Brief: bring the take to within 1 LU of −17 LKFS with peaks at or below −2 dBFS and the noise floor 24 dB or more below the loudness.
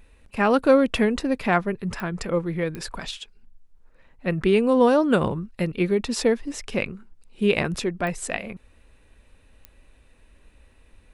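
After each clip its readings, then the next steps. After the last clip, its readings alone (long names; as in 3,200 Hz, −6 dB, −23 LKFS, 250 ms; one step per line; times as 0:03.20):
number of clicks 4; integrated loudness −23.5 LKFS; sample peak −5.5 dBFS; target loudness −17.0 LKFS
→ click removal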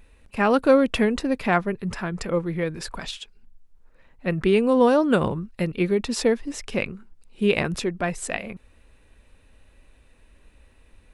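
number of clicks 0; integrated loudness −23.5 LKFS; sample peak −5.5 dBFS; target loudness −17.0 LKFS
→ level +6.5 dB
brickwall limiter −2 dBFS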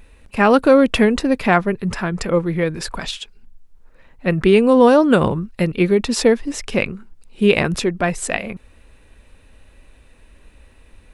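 integrated loudness −17.0 LKFS; sample peak −2.0 dBFS; background noise floor −50 dBFS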